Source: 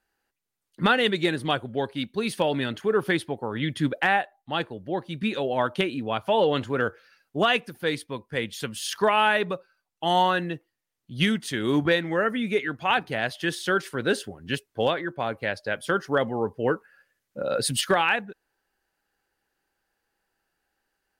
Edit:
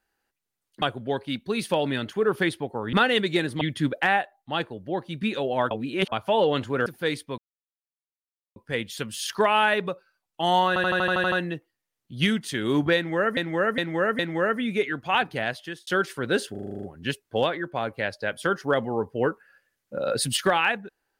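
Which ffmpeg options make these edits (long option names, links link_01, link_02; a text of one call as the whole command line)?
ffmpeg -i in.wav -filter_complex "[0:a]asplit=28[link_01][link_02][link_03][link_04][link_05][link_06][link_07][link_08][link_09][link_10][link_11][link_12][link_13][link_14][link_15][link_16][link_17][link_18][link_19][link_20][link_21][link_22][link_23][link_24][link_25][link_26][link_27][link_28];[link_01]atrim=end=0.822[link_29];[link_02]atrim=start=1.498:end=3.612[link_30];[link_03]atrim=start=0.818:end=1.502[link_31];[link_04]atrim=start=3.608:end=5.712[link_32];[link_05]atrim=start=5.708:end=6.122,asetpts=PTS-STARTPTS,areverse[link_33];[link_06]atrim=start=6.118:end=6.862[link_34];[link_07]atrim=start=7.668:end=8.19,asetpts=PTS-STARTPTS,afade=type=out:start_time=0.518:duration=0.004:curve=hsin,apad=pad_dur=1.18[link_35];[link_08]atrim=start=8.19:end=10.392,asetpts=PTS-STARTPTS,afade=type=in:duration=0.004:curve=hsin[link_36];[link_09]atrim=start=10.308:end=10.392[link_37];[link_10]atrim=start=10.308:end=10.392[link_38];[link_11]atrim=start=10.308:end=10.392[link_39];[link_12]atrim=start=10.308:end=10.392[link_40];[link_13]atrim=start=10.308:end=10.392[link_41];[link_14]atrim=start=10.308:end=10.392[link_42];[link_15]atrim=start=10.308:end=10.392[link_43];[link_16]atrim=start=10.308:end=12.362[link_44];[link_17]atrim=start=11.948:end=12.362[link_45];[link_18]atrim=start=11.948:end=12.362[link_46];[link_19]atrim=start=11.948:end=13.63,asetpts=PTS-STARTPTS,afade=type=out:start_time=1.232:duration=0.45[link_47];[link_20]atrim=start=13.63:end=14.312,asetpts=PTS-STARTPTS,afade=type=in:duration=0.004:curve=hsin[link_48];[link_21]atrim=start=14.268:end=14.312[link_49];[link_22]atrim=start=14.268:end=14.312[link_50];[link_23]atrim=start=14.268:end=14.312[link_51];[link_24]atrim=start=14.268:end=14.312[link_52];[link_25]atrim=start=14.268:end=14.312[link_53];[link_26]atrim=start=14.268:end=14.312[link_54];[link_27]atrim=start=14.268:end=14.312[link_55];[link_28]atrim=start=14.268[link_56];[link_29][link_30]acrossfade=duration=0.004:curve1=hsin:curve2=hsin[link_57];[link_57][link_31]acrossfade=duration=0.004:curve1=hsin:curve2=hsin[link_58];[link_58][link_32]acrossfade=duration=0.004:curve1=hsin:curve2=hsin[link_59];[link_59][link_33]acrossfade=duration=0.004:curve1=hsin:curve2=hsin[link_60];[link_60][link_34]acrossfade=duration=0.004:curve1=hsin:curve2=hsin[link_61];[link_35][link_36]concat=n=2:v=0:a=1[link_62];[link_61][link_62]acrossfade=duration=0.004:curve1=hsin:curve2=hsin[link_63];[link_63][link_37]acrossfade=duration=0.004:curve1=hsin:curve2=hsin[link_64];[link_64][link_38]acrossfade=duration=0.004:curve1=hsin:curve2=hsin[link_65];[link_65][link_39]acrossfade=duration=0.004:curve1=hsin:curve2=hsin[link_66];[link_66][link_40]acrossfade=duration=0.004:curve1=hsin:curve2=hsin[link_67];[link_67][link_41]acrossfade=duration=0.004:curve1=hsin:curve2=hsin[link_68];[link_68][link_42]acrossfade=duration=0.004:curve1=hsin:curve2=hsin[link_69];[link_69][link_43]acrossfade=duration=0.004:curve1=hsin:curve2=hsin[link_70];[link_70][link_44]acrossfade=duration=0.004:curve1=hsin:curve2=hsin[link_71];[link_71][link_45]acrossfade=duration=0.004:curve1=hsin:curve2=hsin[link_72];[link_72][link_46]acrossfade=duration=0.004:curve1=hsin:curve2=hsin[link_73];[link_47][link_48]concat=n=2:v=0:a=1[link_74];[link_73][link_74]acrossfade=duration=0.004:curve1=hsin:curve2=hsin[link_75];[link_75][link_49]acrossfade=duration=0.004:curve1=hsin:curve2=hsin[link_76];[link_76][link_50]acrossfade=duration=0.004:curve1=hsin:curve2=hsin[link_77];[link_77][link_51]acrossfade=duration=0.004:curve1=hsin:curve2=hsin[link_78];[link_78][link_52]acrossfade=duration=0.004:curve1=hsin:curve2=hsin[link_79];[link_79][link_53]acrossfade=duration=0.004:curve1=hsin:curve2=hsin[link_80];[link_80][link_54]acrossfade=duration=0.004:curve1=hsin:curve2=hsin[link_81];[link_81][link_55]acrossfade=duration=0.004:curve1=hsin:curve2=hsin[link_82];[link_82][link_56]acrossfade=duration=0.004:curve1=hsin:curve2=hsin" out.wav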